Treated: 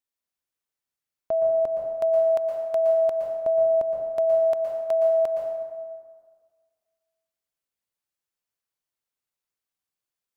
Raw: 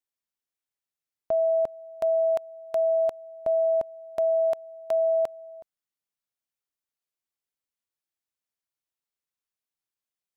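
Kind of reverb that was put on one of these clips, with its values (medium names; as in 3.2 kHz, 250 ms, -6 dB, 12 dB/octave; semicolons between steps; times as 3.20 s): plate-style reverb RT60 1.7 s, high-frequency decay 0.55×, pre-delay 105 ms, DRR 1 dB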